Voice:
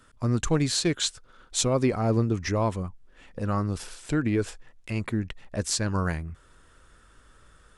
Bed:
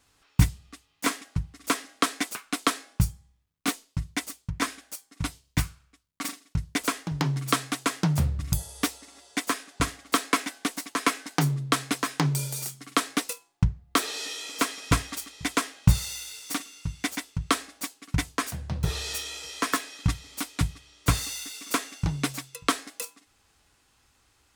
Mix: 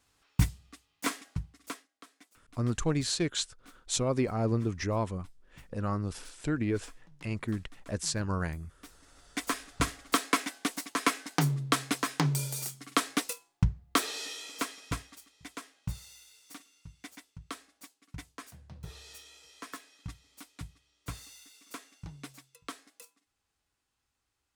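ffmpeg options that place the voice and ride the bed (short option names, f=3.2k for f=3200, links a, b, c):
-filter_complex "[0:a]adelay=2350,volume=-5dB[a];[1:a]volume=21dB,afade=t=out:st=1.32:d=0.56:silence=0.0630957,afade=t=in:st=8.82:d=0.82:silence=0.0473151,afade=t=out:st=14:d=1.15:silence=0.188365[b];[a][b]amix=inputs=2:normalize=0"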